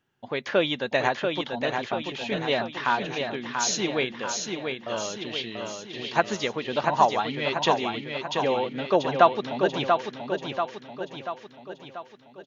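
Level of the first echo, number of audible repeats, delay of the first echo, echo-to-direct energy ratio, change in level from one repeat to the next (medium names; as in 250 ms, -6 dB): -5.0 dB, 6, 687 ms, -3.5 dB, -5.5 dB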